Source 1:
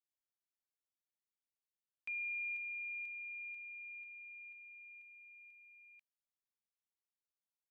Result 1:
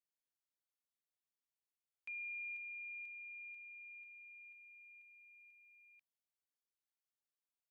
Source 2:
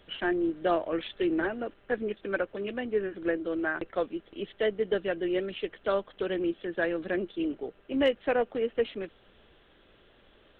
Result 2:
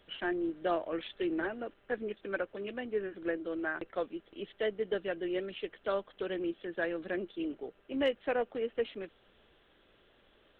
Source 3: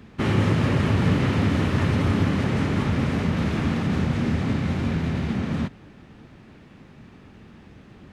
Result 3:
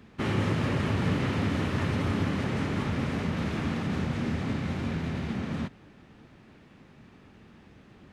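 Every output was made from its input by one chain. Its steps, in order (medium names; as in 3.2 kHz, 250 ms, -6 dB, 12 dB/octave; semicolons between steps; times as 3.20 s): bass shelf 230 Hz -3.5 dB; trim -4.5 dB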